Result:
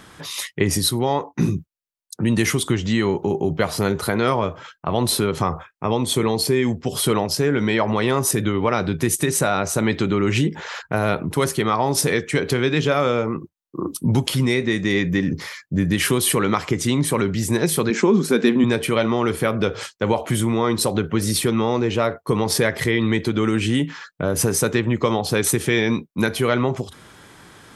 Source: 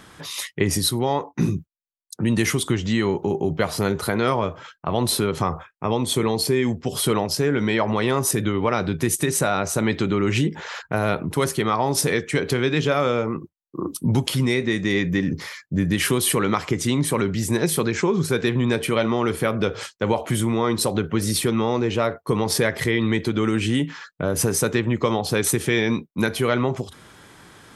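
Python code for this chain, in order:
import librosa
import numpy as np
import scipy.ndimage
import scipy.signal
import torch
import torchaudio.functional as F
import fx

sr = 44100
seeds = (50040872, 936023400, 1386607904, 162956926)

y = fx.low_shelf_res(x, sr, hz=150.0, db=-13.5, q=3.0, at=(17.9, 18.64))
y = y * librosa.db_to_amplitude(1.5)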